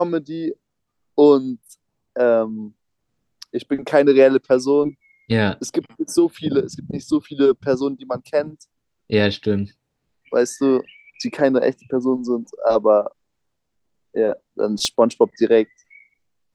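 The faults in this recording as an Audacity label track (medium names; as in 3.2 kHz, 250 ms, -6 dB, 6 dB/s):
14.850000	14.850000	pop -8 dBFS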